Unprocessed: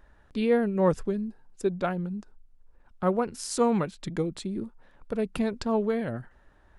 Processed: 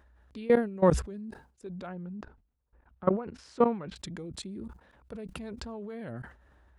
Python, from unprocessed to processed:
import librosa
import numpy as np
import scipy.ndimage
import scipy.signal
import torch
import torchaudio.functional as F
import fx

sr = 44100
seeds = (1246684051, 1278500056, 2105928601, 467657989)

y = scipy.signal.sosfilt(scipy.signal.butter(4, 45.0, 'highpass', fs=sr, output='sos'), x)
y = fx.peak_eq(y, sr, hz=62.0, db=14.5, octaves=0.3)
y = fx.level_steps(y, sr, step_db=21)
y = fx.lowpass(y, sr, hz=2500.0, slope=12, at=(1.87, 3.96))
y = fx.sustainer(y, sr, db_per_s=130.0)
y = y * librosa.db_to_amplitude(2.5)